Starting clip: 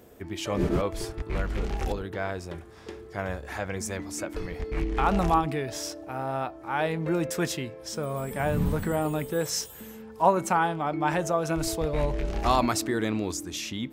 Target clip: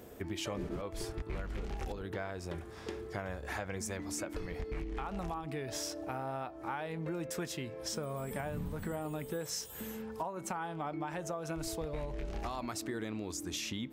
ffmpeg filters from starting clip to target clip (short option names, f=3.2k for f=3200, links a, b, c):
-af "alimiter=limit=-16.5dB:level=0:latency=1:release=410,acompressor=threshold=-36dB:ratio=10,volume=1dB"